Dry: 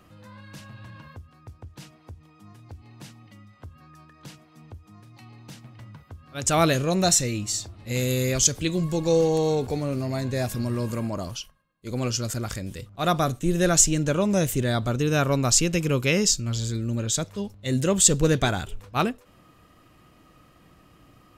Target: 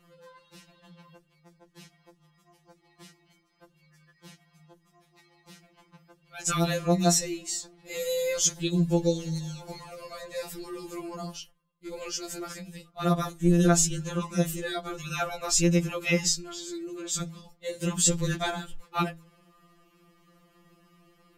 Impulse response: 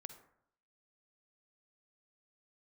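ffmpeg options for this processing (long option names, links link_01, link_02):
-af "bandreject=frequency=81.75:width_type=h:width=4,bandreject=frequency=163.5:width_type=h:width=4,bandreject=frequency=245.25:width_type=h:width=4,bandreject=frequency=327:width_type=h:width=4,bandreject=frequency=408.75:width_type=h:width=4,bandreject=frequency=490.5:width_type=h:width=4,bandreject=frequency=572.25:width_type=h:width=4,bandreject=frequency=654:width_type=h:width=4,bandreject=frequency=735.75:width_type=h:width=4,bandreject=frequency=817.5:width_type=h:width=4,bandreject=frequency=899.25:width_type=h:width=4,bandreject=frequency=981:width_type=h:width=4,bandreject=frequency=1062.75:width_type=h:width=4,afftfilt=real='re*2.83*eq(mod(b,8),0)':imag='im*2.83*eq(mod(b,8),0)':win_size=2048:overlap=0.75,volume=-2.5dB"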